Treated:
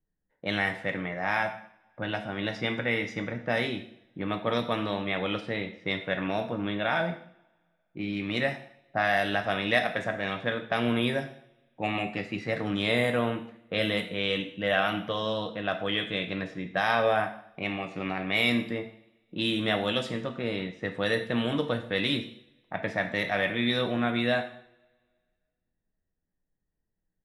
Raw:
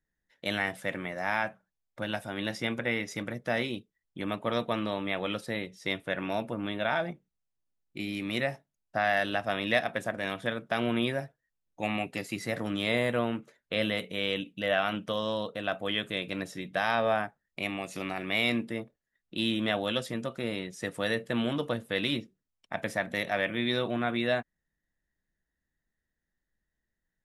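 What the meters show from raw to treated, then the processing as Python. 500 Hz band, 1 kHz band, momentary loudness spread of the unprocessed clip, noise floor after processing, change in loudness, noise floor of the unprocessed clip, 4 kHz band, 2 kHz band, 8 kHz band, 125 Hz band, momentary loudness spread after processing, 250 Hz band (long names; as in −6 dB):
+2.0 dB, +2.5 dB, 9 LU, −81 dBFS, +2.5 dB, −85 dBFS, +2.5 dB, +2.5 dB, can't be measured, +3.5 dB, 9 LU, +2.0 dB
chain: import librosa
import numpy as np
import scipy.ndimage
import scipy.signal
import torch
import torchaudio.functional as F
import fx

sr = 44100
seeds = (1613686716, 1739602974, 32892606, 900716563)

y = fx.env_lowpass(x, sr, base_hz=830.0, full_db=-24.0)
y = fx.rev_double_slope(y, sr, seeds[0], early_s=0.57, late_s=1.9, knee_db=-26, drr_db=5.0)
y = y * librosa.db_to_amplitude(1.5)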